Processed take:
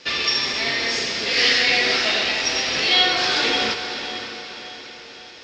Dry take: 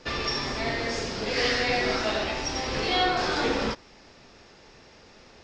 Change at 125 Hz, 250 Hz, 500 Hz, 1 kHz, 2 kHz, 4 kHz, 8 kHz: −5.0, −0.5, +1.0, +2.0, +9.0, +11.5, +9.0 decibels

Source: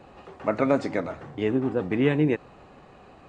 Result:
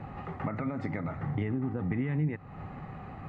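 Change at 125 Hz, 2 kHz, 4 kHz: 0.0 dB, −8.5 dB, below −15 dB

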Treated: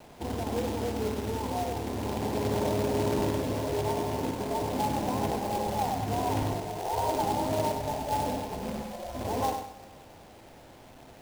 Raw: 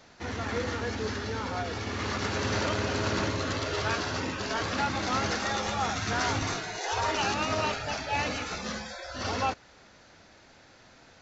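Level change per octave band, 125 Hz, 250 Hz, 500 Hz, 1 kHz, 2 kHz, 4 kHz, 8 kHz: +1.0 dB, +3.0 dB, +3.0 dB, +0.5 dB, −11.5 dB, −8.0 dB, can't be measured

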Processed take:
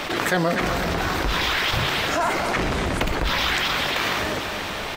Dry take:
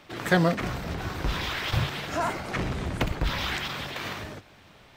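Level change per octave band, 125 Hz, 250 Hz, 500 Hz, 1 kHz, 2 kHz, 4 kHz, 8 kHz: +0.5, +3.5, +6.0, +8.0, +8.5, +9.5, +10.0 decibels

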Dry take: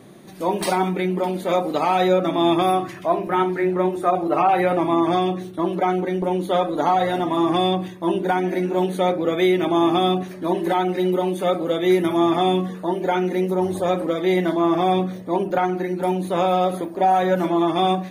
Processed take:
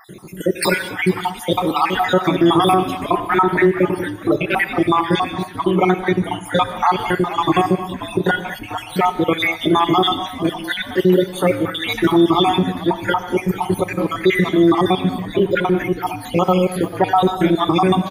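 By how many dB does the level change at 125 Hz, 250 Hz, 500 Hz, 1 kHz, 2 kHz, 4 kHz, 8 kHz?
+5.5 dB, +3.5 dB, +1.5 dB, +2.0 dB, +8.5 dB, +6.5 dB, can't be measured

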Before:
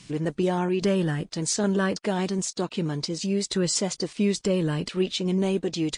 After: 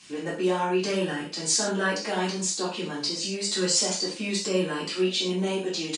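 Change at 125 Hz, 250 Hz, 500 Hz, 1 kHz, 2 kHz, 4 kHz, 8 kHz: −7.5, −4.5, −1.0, +2.5, +4.0, +4.5, +3.5 decibels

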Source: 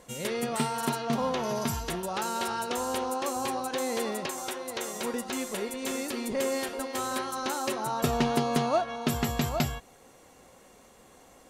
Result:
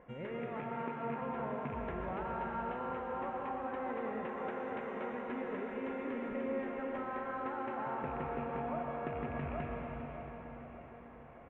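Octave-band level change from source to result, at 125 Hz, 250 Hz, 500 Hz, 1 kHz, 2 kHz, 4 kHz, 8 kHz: −10.0 dB, −8.5 dB, −7.5 dB, −7.5 dB, −8.5 dB, −25.5 dB, below −40 dB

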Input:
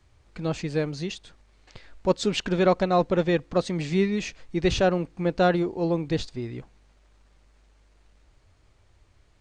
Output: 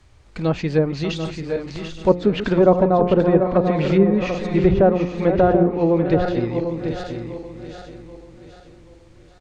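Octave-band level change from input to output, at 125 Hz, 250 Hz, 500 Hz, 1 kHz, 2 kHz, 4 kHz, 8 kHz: +8.0 dB, +8.0 dB, +8.0 dB, +6.0 dB, +2.0 dB, −1.0 dB, can't be measured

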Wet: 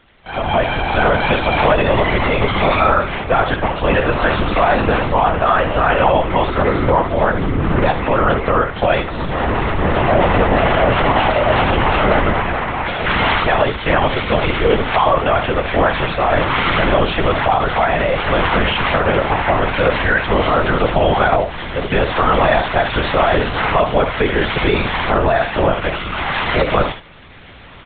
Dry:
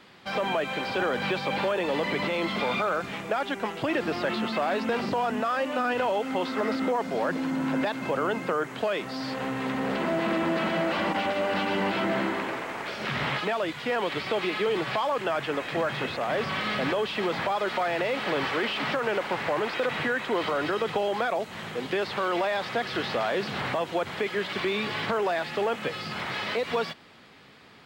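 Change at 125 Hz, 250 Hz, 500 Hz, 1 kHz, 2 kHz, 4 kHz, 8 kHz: +19.0 dB, +9.5 dB, +11.5 dB, +13.5 dB, +11.5 dB, +9.5 dB, below −25 dB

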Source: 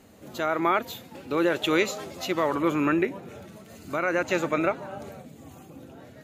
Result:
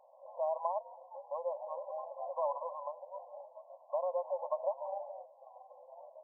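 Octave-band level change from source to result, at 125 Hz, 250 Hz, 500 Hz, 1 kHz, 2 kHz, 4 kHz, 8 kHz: below −40 dB, below −40 dB, −9.0 dB, −9.0 dB, below −40 dB, below −40 dB, below −40 dB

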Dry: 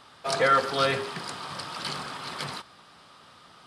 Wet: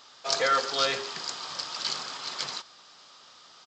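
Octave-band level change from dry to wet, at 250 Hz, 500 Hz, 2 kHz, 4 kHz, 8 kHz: −8.5, −4.5, −2.5, +4.0, +5.0 decibels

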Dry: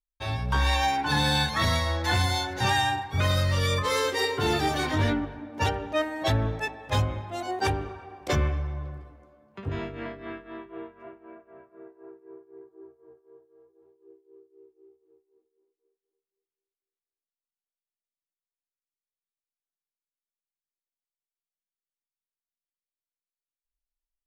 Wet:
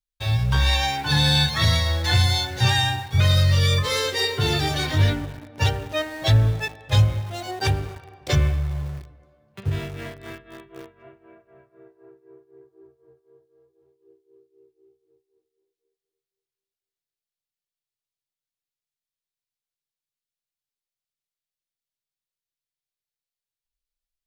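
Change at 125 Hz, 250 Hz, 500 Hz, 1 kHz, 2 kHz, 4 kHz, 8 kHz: +8.5, +1.0, 0.0, −2.0, +2.0, +7.0, +4.5 decibels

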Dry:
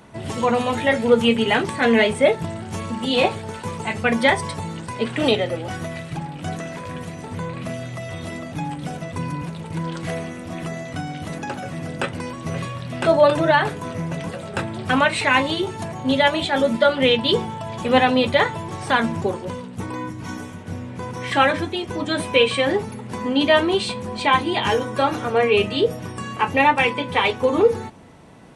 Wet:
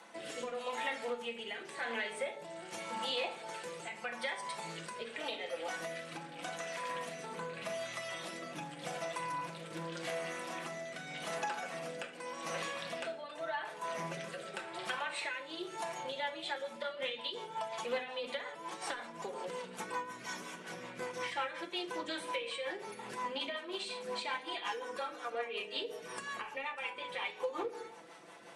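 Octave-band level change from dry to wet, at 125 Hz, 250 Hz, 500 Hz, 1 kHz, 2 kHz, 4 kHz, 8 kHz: −26.5, −25.0, −20.0, −17.0, −16.5, −15.5, −10.5 decibels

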